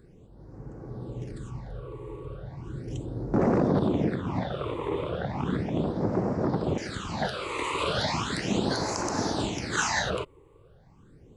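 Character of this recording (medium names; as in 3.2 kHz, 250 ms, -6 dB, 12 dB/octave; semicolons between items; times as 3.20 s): phasing stages 8, 0.36 Hz, lowest notch 200–3300 Hz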